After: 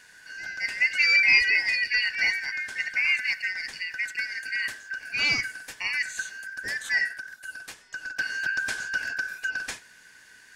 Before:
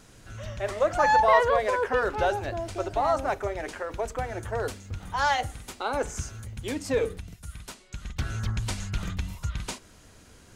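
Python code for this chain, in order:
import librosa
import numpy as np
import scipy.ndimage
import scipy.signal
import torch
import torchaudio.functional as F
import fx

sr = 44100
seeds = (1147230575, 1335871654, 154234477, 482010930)

p1 = fx.band_shuffle(x, sr, order='3142')
y = p1 + fx.echo_single(p1, sr, ms=92, db=-22.5, dry=0)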